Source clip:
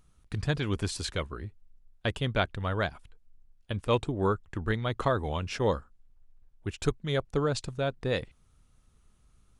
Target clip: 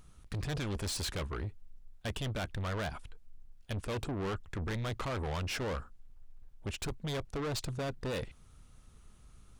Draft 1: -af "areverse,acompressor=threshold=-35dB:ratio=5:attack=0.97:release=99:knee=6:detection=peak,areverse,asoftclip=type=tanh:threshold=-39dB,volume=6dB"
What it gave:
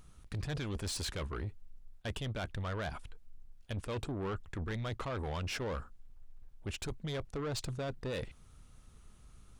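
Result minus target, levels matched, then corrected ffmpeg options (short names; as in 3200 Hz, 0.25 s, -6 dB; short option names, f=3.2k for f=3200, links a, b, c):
compressor: peak gain reduction +7 dB
-af "areverse,acompressor=threshold=-26dB:ratio=5:attack=0.97:release=99:knee=6:detection=peak,areverse,asoftclip=type=tanh:threshold=-39dB,volume=6dB"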